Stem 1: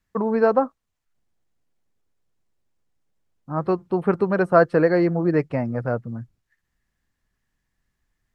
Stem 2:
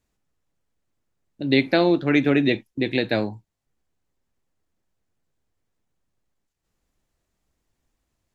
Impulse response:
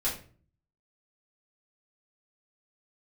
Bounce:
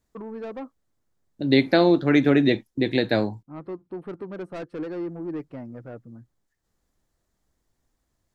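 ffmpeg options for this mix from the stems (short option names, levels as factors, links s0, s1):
-filter_complex "[0:a]asoftclip=type=tanh:threshold=0.119,equalizer=f=310:w=2.2:g=9,volume=0.2[s0];[1:a]equalizer=f=2600:w=2.7:g=-7,volume=1.12,asplit=3[s1][s2][s3];[s1]atrim=end=3.43,asetpts=PTS-STARTPTS,afade=t=out:st=3.426:d=0.004:c=hsin[s4];[s2]atrim=start=3.43:end=4.71,asetpts=PTS-STARTPTS,volume=0[s5];[s3]atrim=start=4.71,asetpts=PTS-STARTPTS,afade=t=in:d=0.004:c=hsin[s6];[s4][s5][s6]concat=n=3:v=0:a=1[s7];[s0][s7]amix=inputs=2:normalize=0"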